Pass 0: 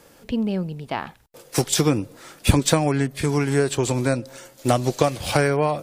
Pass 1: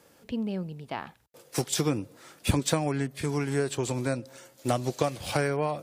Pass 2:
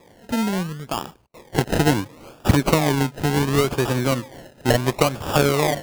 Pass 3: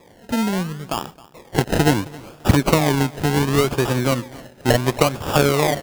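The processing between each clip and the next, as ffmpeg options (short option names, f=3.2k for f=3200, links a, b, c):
-af "highpass=65,volume=-7.5dB"
-af "acrusher=samples=30:mix=1:aa=0.000001:lfo=1:lforange=18:lforate=0.71,volume=8.5dB"
-af "aecho=1:1:267|534:0.0841|0.0194,volume=1.5dB"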